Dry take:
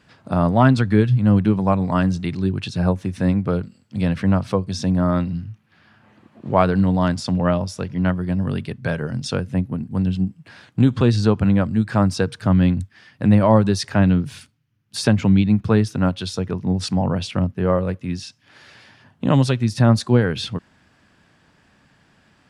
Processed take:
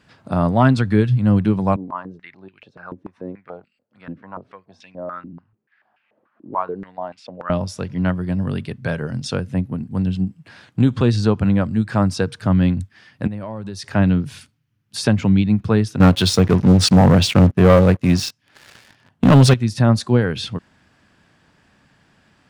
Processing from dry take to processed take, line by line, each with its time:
0:01.76–0:07.50: band-pass on a step sequencer 6.9 Hz 300–2,500 Hz
0:13.27–0:13.95: downward compressor 4 to 1, threshold −29 dBFS
0:16.00–0:19.54: leveller curve on the samples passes 3

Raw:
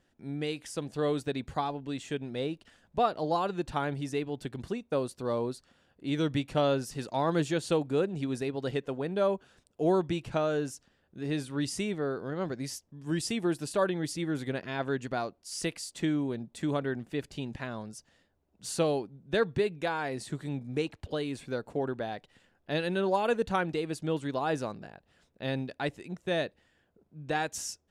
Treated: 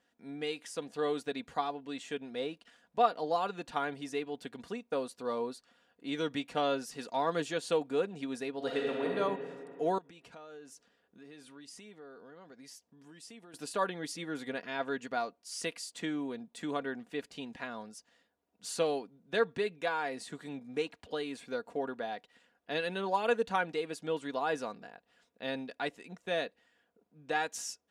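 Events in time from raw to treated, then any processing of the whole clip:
0:08.56–0:09.11: thrown reverb, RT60 2.4 s, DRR −2.5 dB
0:09.98–0:13.54: downward compressor 4 to 1, threshold −46 dBFS
whole clip: high-pass filter 500 Hz 6 dB per octave; high-shelf EQ 5,400 Hz −4.5 dB; comb filter 4.2 ms, depth 49%; level −1 dB

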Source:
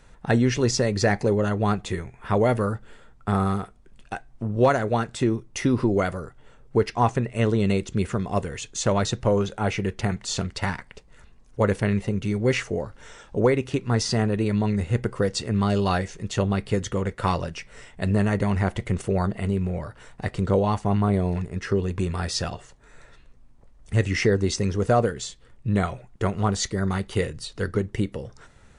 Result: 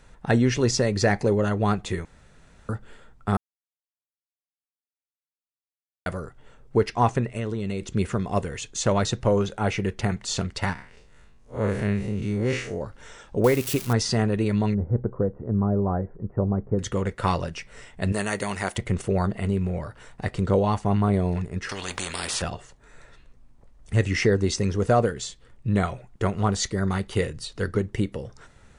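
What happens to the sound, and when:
0:02.05–0:02.69: fill with room tone
0:03.37–0:06.06: silence
0:07.25–0:07.88: downward compressor, threshold −24 dBFS
0:10.73–0:12.81: spectrum smeared in time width 114 ms
0:13.44–0:13.93: spike at every zero crossing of −21 dBFS
0:14.74–0:16.79: Gaussian smoothing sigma 8.5 samples
0:18.12–0:18.78: RIAA equalisation recording
0:21.69–0:22.42: every bin compressed towards the loudest bin 4 to 1

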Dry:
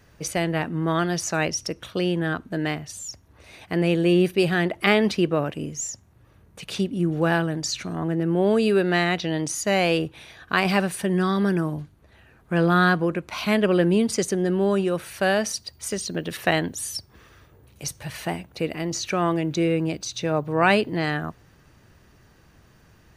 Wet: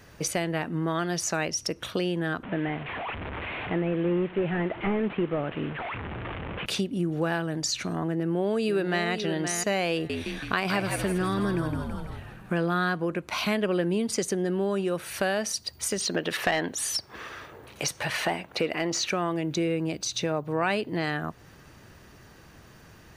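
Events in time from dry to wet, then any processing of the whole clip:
0:02.43–0:06.66: linear delta modulator 16 kbit/s, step −32.5 dBFS
0:08.16–0:09.11: delay throw 520 ms, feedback 15%, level −10 dB
0:09.93–0:12.64: echo with shifted repeats 164 ms, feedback 50%, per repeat −68 Hz, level −7 dB
0:16.00–0:19.09: mid-hump overdrive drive 16 dB, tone 2,400 Hz, clips at −6 dBFS
whole clip: low-shelf EQ 130 Hz −5.5 dB; downward compressor 2.5 to 1, threshold −34 dBFS; level +5.5 dB

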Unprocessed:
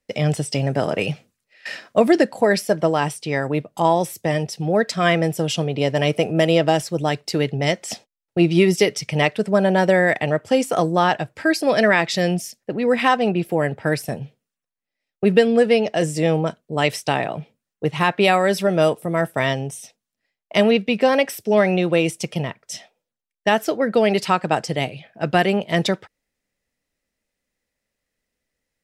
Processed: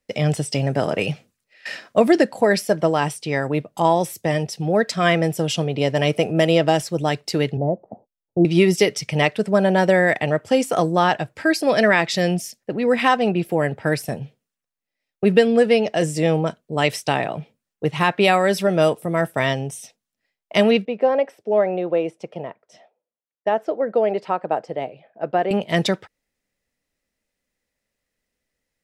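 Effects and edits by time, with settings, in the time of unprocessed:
0:07.57–0:08.45: Butterworth low-pass 860 Hz
0:20.85–0:25.51: resonant band-pass 590 Hz, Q 1.2

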